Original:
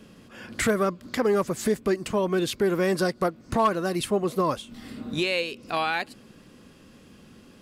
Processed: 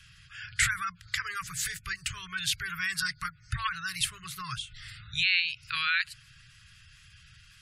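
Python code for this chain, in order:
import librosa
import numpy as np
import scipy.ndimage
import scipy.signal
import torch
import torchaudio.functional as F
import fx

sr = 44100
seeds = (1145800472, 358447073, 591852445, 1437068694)

y = scipy.signal.sosfilt(scipy.signal.cheby2(4, 40, [210.0, 850.0], 'bandstop', fs=sr, output='sos'), x)
y = fx.hum_notches(y, sr, base_hz=50, count=4)
y = fx.spec_gate(y, sr, threshold_db=-25, keep='strong')
y = y * 10.0 ** (3.5 / 20.0)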